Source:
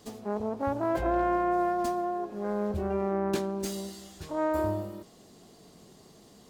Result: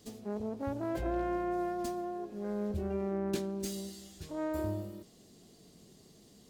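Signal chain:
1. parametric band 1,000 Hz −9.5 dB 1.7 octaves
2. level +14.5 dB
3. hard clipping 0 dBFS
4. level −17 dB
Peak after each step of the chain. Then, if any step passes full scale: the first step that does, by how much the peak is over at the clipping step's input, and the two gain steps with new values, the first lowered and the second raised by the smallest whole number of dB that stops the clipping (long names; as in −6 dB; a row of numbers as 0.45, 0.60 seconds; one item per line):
−18.0, −3.5, −3.5, −20.5 dBFS
no step passes full scale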